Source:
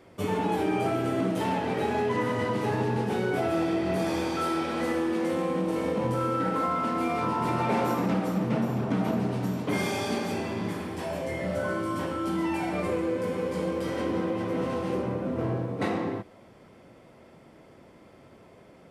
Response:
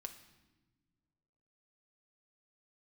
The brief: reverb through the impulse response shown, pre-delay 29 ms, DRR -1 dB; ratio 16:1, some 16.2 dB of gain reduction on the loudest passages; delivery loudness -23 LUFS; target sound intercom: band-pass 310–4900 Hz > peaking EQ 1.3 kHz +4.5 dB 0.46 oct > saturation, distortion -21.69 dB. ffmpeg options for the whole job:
-filter_complex "[0:a]acompressor=threshold=0.0112:ratio=16,asplit=2[s0][s1];[1:a]atrim=start_sample=2205,adelay=29[s2];[s1][s2]afir=irnorm=-1:irlink=0,volume=1.78[s3];[s0][s3]amix=inputs=2:normalize=0,highpass=310,lowpass=4900,equalizer=f=1300:t=o:w=0.46:g=4.5,asoftclip=threshold=0.0251,volume=10.6"

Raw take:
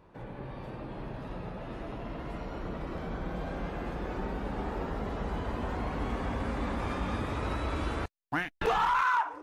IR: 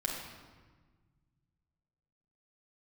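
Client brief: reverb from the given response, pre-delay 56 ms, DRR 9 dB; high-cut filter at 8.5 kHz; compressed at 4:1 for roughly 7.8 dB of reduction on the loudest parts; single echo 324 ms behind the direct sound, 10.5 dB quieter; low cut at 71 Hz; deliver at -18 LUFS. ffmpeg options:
-filter_complex "[0:a]highpass=71,lowpass=8500,acompressor=threshold=0.0224:ratio=4,aecho=1:1:324:0.299,asplit=2[s0][s1];[1:a]atrim=start_sample=2205,adelay=56[s2];[s1][s2]afir=irnorm=-1:irlink=0,volume=0.224[s3];[s0][s3]amix=inputs=2:normalize=0,volume=9.44"

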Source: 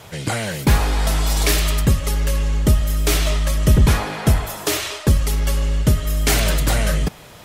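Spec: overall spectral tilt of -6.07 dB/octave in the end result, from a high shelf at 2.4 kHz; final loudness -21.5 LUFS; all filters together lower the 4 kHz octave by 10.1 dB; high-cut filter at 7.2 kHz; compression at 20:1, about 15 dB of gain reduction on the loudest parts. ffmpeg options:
-af "lowpass=7200,highshelf=f=2400:g=-5.5,equalizer=f=4000:t=o:g=-8,acompressor=threshold=0.0562:ratio=20,volume=2.99"

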